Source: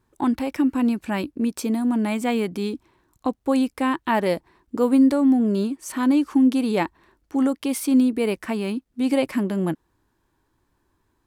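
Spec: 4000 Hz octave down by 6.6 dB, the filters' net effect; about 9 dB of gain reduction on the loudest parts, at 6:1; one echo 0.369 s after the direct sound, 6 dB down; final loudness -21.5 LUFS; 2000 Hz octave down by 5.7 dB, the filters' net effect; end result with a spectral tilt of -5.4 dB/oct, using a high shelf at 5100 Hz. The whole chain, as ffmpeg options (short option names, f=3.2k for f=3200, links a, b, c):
-af "equalizer=f=2k:t=o:g=-5,equalizer=f=4k:t=o:g=-3.5,highshelf=f=5.1k:g=-8,acompressor=threshold=-23dB:ratio=6,aecho=1:1:369:0.501,volume=6dB"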